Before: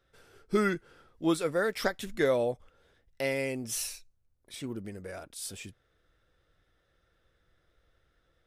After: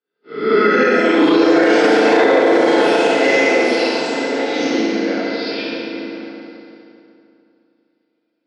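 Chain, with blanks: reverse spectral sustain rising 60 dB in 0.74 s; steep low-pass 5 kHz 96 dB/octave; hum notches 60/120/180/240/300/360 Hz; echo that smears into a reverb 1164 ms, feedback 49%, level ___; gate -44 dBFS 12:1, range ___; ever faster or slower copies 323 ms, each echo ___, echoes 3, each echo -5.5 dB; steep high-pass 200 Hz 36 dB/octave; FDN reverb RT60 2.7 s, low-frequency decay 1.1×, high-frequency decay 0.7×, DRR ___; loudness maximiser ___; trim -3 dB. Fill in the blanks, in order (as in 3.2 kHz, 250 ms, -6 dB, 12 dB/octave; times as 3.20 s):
-10 dB, -36 dB, +4 st, -9.5 dB, +10.5 dB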